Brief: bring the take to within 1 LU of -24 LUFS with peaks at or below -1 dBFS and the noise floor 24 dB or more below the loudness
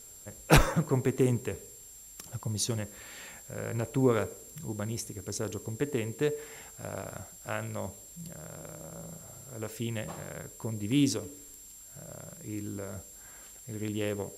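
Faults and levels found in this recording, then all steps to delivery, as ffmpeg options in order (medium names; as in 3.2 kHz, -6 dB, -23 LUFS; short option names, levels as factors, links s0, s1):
steady tone 7.4 kHz; tone level -49 dBFS; noise floor -50 dBFS; noise floor target -57 dBFS; loudness -32.5 LUFS; peak level -5.0 dBFS; loudness target -24.0 LUFS
-> -af "bandreject=f=7400:w=30"
-af "afftdn=nr=7:nf=-50"
-af "volume=2.66,alimiter=limit=0.891:level=0:latency=1"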